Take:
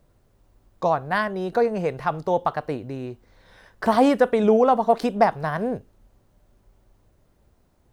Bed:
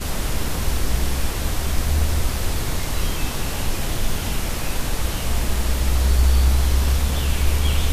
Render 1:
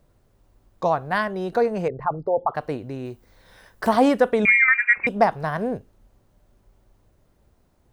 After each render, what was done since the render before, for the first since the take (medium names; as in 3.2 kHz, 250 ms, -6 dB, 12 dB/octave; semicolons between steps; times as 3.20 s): 1.88–2.55 s: resonances exaggerated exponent 2; 3.05–3.89 s: treble shelf 8.4 kHz +11.5 dB; 4.45–5.07 s: frequency inversion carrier 2.6 kHz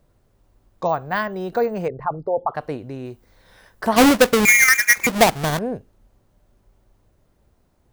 0.87–1.86 s: careless resampling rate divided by 2×, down none, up hold; 3.96–5.59 s: square wave that keeps the level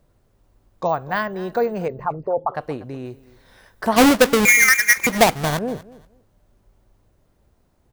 feedback delay 240 ms, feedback 19%, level -19.5 dB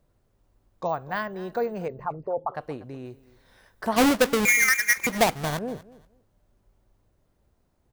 trim -6.5 dB